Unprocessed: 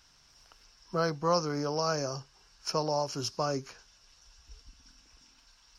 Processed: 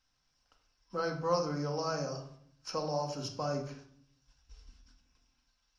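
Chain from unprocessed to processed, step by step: gate -56 dBFS, range -10 dB; high shelf 11000 Hz -12 dB; reverb RT60 0.60 s, pre-delay 4 ms, DRR 1.5 dB; gain -6.5 dB

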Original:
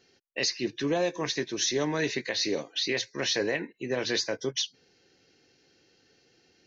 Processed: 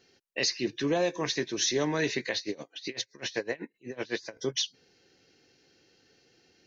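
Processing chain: 2.37–4.37 dB-linear tremolo 7.9 Hz, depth 24 dB

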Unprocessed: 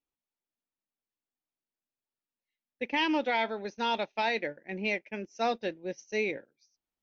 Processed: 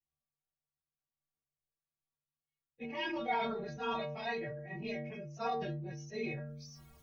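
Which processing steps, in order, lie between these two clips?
phase scrambler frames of 50 ms; resonant low shelf 200 Hz +13 dB, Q 3; metallic resonator 69 Hz, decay 0.69 s, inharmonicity 0.03; small resonant body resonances 380/690/1100 Hz, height 14 dB, ringing for 30 ms; sustainer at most 34 dB/s

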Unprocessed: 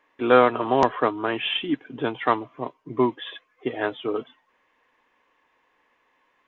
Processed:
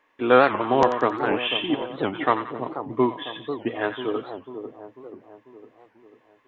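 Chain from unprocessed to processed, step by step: split-band echo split 1000 Hz, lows 0.494 s, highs 89 ms, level -9 dB; record warp 78 rpm, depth 250 cents

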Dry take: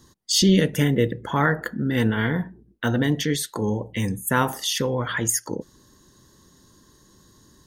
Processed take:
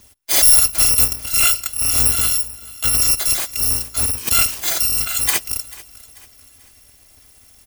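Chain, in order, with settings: FFT order left unsorted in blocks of 256 samples; on a send: feedback echo 0.44 s, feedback 43%, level -20 dB; on the sum: gain +5.5 dB

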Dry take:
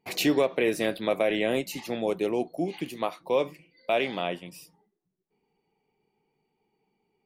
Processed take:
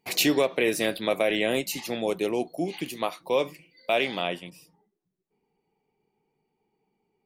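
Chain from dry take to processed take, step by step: high shelf 2600 Hz +7.5 dB, from 4.5 s -6.5 dB

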